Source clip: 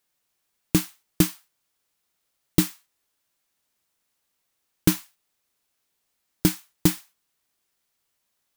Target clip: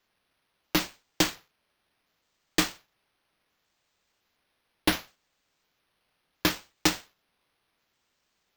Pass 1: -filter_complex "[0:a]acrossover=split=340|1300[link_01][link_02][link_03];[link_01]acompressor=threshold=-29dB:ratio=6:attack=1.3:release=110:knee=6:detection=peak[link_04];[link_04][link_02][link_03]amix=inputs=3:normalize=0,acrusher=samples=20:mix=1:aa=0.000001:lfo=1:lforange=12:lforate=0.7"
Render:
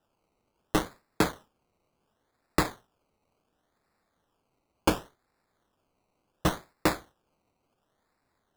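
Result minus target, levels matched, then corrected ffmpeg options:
sample-and-hold swept by an LFO: distortion +4 dB
-filter_complex "[0:a]acrossover=split=340|1300[link_01][link_02][link_03];[link_01]acompressor=threshold=-29dB:ratio=6:attack=1.3:release=110:knee=6:detection=peak[link_04];[link_04][link_02][link_03]amix=inputs=3:normalize=0,acrusher=samples=5:mix=1:aa=0.000001:lfo=1:lforange=3:lforate=0.7"

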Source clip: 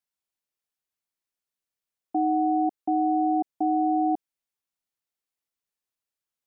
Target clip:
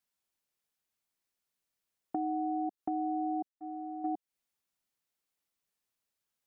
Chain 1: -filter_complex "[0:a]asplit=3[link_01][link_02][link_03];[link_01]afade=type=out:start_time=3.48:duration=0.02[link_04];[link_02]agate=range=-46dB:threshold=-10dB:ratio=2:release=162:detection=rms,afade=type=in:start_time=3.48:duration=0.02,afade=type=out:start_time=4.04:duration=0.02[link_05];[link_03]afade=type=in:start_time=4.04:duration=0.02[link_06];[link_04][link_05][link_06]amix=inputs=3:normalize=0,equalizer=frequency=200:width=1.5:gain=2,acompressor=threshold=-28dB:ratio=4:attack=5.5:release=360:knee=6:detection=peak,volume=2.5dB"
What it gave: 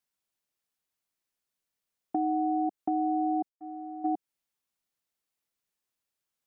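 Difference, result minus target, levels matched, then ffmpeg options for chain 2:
downward compressor: peak gain reduction −5 dB
-filter_complex "[0:a]asplit=3[link_01][link_02][link_03];[link_01]afade=type=out:start_time=3.48:duration=0.02[link_04];[link_02]agate=range=-46dB:threshold=-10dB:ratio=2:release=162:detection=rms,afade=type=in:start_time=3.48:duration=0.02,afade=type=out:start_time=4.04:duration=0.02[link_05];[link_03]afade=type=in:start_time=4.04:duration=0.02[link_06];[link_04][link_05][link_06]amix=inputs=3:normalize=0,equalizer=frequency=200:width=1.5:gain=2,acompressor=threshold=-35dB:ratio=4:attack=5.5:release=360:knee=6:detection=peak,volume=2.5dB"

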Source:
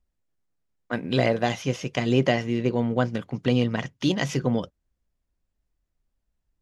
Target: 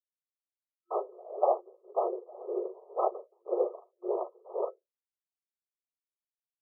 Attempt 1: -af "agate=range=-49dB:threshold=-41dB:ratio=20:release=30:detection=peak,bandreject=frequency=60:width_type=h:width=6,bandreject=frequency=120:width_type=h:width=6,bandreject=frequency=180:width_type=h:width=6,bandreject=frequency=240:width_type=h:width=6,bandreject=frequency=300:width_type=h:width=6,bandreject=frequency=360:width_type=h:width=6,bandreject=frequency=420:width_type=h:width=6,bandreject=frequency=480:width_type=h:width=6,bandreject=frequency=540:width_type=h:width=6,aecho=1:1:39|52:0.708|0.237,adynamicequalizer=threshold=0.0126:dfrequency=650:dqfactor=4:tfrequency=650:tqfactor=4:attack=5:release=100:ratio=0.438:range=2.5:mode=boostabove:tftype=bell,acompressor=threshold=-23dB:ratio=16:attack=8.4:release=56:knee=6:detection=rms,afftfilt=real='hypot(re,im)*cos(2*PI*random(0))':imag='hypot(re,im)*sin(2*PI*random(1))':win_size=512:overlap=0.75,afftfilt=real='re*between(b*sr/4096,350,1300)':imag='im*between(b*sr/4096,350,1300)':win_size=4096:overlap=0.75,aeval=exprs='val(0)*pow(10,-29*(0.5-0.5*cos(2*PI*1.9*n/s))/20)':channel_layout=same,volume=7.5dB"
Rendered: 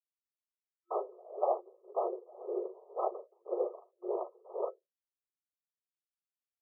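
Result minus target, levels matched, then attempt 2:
downward compressor: peak gain reduction +6.5 dB
-af "agate=range=-49dB:threshold=-41dB:ratio=20:release=30:detection=peak,bandreject=frequency=60:width_type=h:width=6,bandreject=frequency=120:width_type=h:width=6,bandreject=frequency=180:width_type=h:width=6,bandreject=frequency=240:width_type=h:width=6,bandreject=frequency=300:width_type=h:width=6,bandreject=frequency=360:width_type=h:width=6,bandreject=frequency=420:width_type=h:width=6,bandreject=frequency=480:width_type=h:width=6,bandreject=frequency=540:width_type=h:width=6,aecho=1:1:39|52:0.708|0.237,adynamicequalizer=threshold=0.0126:dfrequency=650:dqfactor=4:tfrequency=650:tqfactor=4:attack=5:release=100:ratio=0.438:range=2.5:mode=boostabove:tftype=bell,acompressor=threshold=-16dB:ratio=16:attack=8.4:release=56:knee=6:detection=rms,afftfilt=real='hypot(re,im)*cos(2*PI*random(0))':imag='hypot(re,im)*sin(2*PI*random(1))':win_size=512:overlap=0.75,afftfilt=real='re*between(b*sr/4096,350,1300)':imag='im*between(b*sr/4096,350,1300)':win_size=4096:overlap=0.75,aeval=exprs='val(0)*pow(10,-29*(0.5-0.5*cos(2*PI*1.9*n/s))/20)':channel_layout=same,volume=7.5dB"

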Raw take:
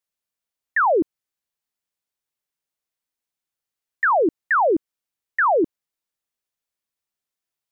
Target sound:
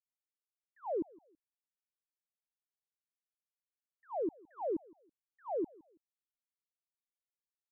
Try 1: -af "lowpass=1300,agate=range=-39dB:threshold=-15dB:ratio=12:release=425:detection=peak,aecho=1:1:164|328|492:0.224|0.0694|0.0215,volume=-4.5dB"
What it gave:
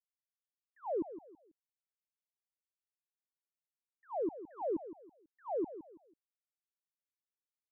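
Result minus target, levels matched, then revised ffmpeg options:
echo-to-direct +11.5 dB
-af "lowpass=1300,agate=range=-39dB:threshold=-15dB:ratio=12:release=425:detection=peak,aecho=1:1:164|328:0.0596|0.0185,volume=-4.5dB"

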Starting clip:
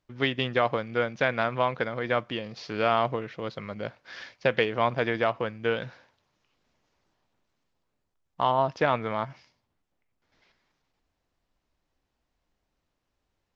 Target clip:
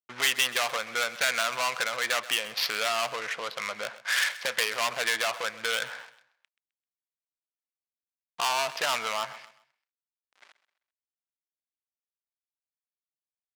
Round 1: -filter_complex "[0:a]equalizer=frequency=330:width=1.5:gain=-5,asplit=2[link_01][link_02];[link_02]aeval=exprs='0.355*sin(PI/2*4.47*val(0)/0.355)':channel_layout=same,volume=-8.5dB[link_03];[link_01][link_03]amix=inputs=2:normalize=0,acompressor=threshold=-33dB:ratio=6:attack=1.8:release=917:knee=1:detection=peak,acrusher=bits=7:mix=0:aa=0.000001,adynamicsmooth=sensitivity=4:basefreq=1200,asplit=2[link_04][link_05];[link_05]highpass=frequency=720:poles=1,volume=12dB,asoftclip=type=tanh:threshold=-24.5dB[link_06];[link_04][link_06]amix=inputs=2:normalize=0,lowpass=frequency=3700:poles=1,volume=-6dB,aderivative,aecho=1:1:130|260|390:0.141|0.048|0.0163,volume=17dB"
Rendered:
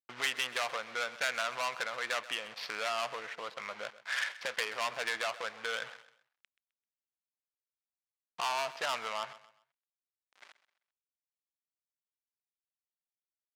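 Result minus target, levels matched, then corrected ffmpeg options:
downward compressor: peak gain reduction +8.5 dB
-filter_complex "[0:a]equalizer=frequency=330:width=1.5:gain=-5,asplit=2[link_01][link_02];[link_02]aeval=exprs='0.355*sin(PI/2*4.47*val(0)/0.355)':channel_layout=same,volume=-8.5dB[link_03];[link_01][link_03]amix=inputs=2:normalize=0,acompressor=threshold=-23dB:ratio=6:attack=1.8:release=917:knee=1:detection=peak,acrusher=bits=7:mix=0:aa=0.000001,adynamicsmooth=sensitivity=4:basefreq=1200,asplit=2[link_04][link_05];[link_05]highpass=frequency=720:poles=1,volume=12dB,asoftclip=type=tanh:threshold=-24.5dB[link_06];[link_04][link_06]amix=inputs=2:normalize=0,lowpass=frequency=3700:poles=1,volume=-6dB,aderivative,aecho=1:1:130|260|390:0.141|0.048|0.0163,volume=17dB"

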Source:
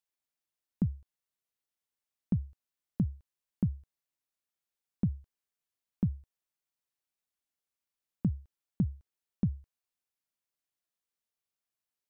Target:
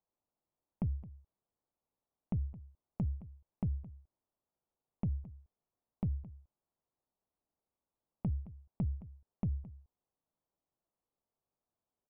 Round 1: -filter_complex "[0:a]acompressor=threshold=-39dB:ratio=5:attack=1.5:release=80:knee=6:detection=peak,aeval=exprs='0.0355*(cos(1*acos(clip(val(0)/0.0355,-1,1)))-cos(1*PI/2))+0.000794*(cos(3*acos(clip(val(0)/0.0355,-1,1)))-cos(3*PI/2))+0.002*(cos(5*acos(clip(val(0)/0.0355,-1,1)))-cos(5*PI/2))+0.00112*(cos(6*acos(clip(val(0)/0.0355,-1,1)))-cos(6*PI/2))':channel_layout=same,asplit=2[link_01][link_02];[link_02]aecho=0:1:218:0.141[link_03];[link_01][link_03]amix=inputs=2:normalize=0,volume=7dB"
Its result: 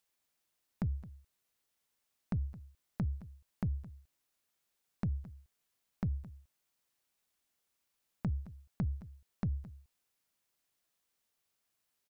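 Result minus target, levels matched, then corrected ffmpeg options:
1,000 Hz band +2.5 dB
-filter_complex "[0:a]acompressor=threshold=-39dB:ratio=5:attack=1.5:release=80:knee=6:detection=peak,lowpass=frequency=1000:width=0.5412,lowpass=frequency=1000:width=1.3066,aeval=exprs='0.0355*(cos(1*acos(clip(val(0)/0.0355,-1,1)))-cos(1*PI/2))+0.000794*(cos(3*acos(clip(val(0)/0.0355,-1,1)))-cos(3*PI/2))+0.002*(cos(5*acos(clip(val(0)/0.0355,-1,1)))-cos(5*PI/2))+0.00112*(cos(6*acos(clip(val(0)/0.0355,-1,1)))-cos(6*PI/2))':channel_layout=same,asplit=2[link_01][link_02];[link_02]aecho=0:1:218:0.141[link_03];[link_01][link_03]amix=inputs=2:normalize=0,volume=7dB"

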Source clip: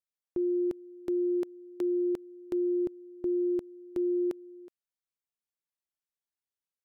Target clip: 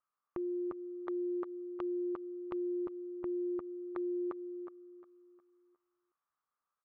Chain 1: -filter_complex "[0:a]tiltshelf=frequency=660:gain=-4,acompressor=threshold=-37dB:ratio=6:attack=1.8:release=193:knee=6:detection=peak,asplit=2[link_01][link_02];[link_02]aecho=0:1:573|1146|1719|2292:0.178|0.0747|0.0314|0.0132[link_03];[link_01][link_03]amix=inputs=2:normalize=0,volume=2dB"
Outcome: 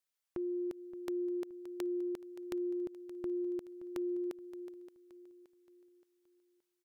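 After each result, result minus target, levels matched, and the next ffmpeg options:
echo 214 ms late; 1,000 Hz band −6.5 dB
-filter_complex "[0:a]tiltshelf=frequency=660:gain=-4,acompressor=threshold=-37dB:ratio=6:attack=1.8:release=193:knee=6:detection=peak,asplit=2[link_01][link_02];[link_02]aecho=0:1:359|718|1077|1436:0.178|0.0747|0.0314|0.0132[link_03];[link_01][link_03]amix=inputs=2:normalize=0,volume=2dB"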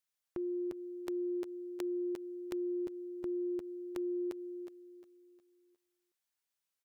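1,000 Hz band −7.5 dB
-filter_complex "[0:a]lowpass=frequency=1200:width_type=q:width=8.1,tiltshelf=frequency=660:gain=-4,acompressor=threshold=-37dB:ratio=6:attack=1.8:release=193:knee=6:detection=peak,asplit=2[link_01][link_02];[link_02]aecho=0:1:359|718|1077|1436:0.178|0.0747|0.0314|0.0132[link_03];[link_01][link_03]amix=inputs=2:normalize=0,volume=2dB"

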